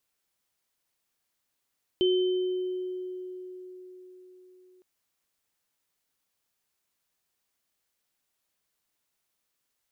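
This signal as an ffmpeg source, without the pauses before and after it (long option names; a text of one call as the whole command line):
ffmpeg -f lavfi -i "aevalsrc='0.1*pow(10,-3*t/4.67)*sin(2*PI*367*t)+0.0398*pow(10,-3*t/1.54)*sin(2*PI*3080*t)':duration=2.81:sample_rate=44100" out.wav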